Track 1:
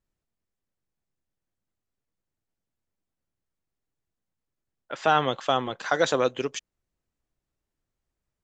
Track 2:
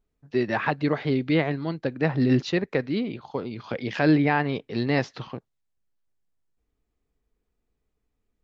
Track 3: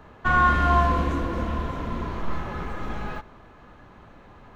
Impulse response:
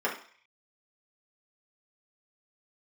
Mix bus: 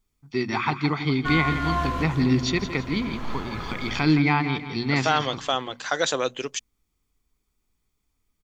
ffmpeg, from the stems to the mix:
-filter_complex "[0:a]volume=-3dB[link_01];[1:a]aecho=1:1:0.9:0.82,volume=-2.5dB,asplit=3[link_02][link_03][link_04];[link_03]volume=-11dB[link_05];[2:a]adelay=1000,volume=-2dB[link_06];[link_04]apad=whole_len=244816[link_07];[link_06][link_07]sidechaincompress=threshold=-24dB:ratio=8:attack=7:release=1400[link_08];[link_05]aecho=0:1:167|334|501|668|835:1|0.39|0.152|0.0593|0.0231[link_09];[link_01][link_02][link_08][link_09]amix=inputs=4:normalize=0,highshelf=frequency=2400:gain=10,bandreject=frequency=60:width_type=h:width=6,bandreject=frequency=120:width_type=h:width=6,bandreject=frequency=180:width_type=h:width=6,bandreject=frequency=240:width_type=h:width=6"

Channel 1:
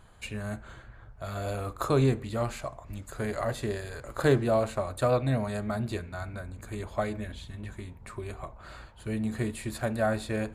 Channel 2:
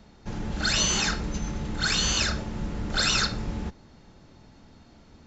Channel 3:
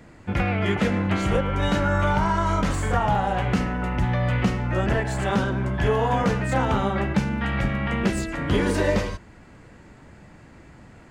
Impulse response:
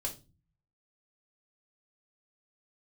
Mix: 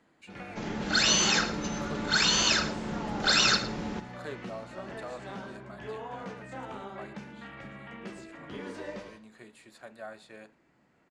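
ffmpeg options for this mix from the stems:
-filter_complex "[0:a]lowshelf=frequency=400:gain=-10.5,volume=-12.5dB[link_01];[1:a]adelay=300,volume=1.5dB,asplit=2[link_02][link_03];[link_03]volume=-15.5dB[link_04];[2:a]flanger=delay=9.9:depth=9.3:regen=-63:speed=0.81:shape=triangular,volume=-13dB,asplit=2[link_05][link_06];[link_06]volume=-13.5dB[link_07];[link_04][link_07]amix=inputs=2:normalize=0,aecho=0:1:110:1[link_08];[link_01][link_02][link_05][link_08]amix=inputs=4:normalize=0,acrossover=split=160 7900:gain=0.141 1 0.224[link_09][link_10][link_11];[link_09][link_10][link_11]amix=inputs=3:normalize=0"

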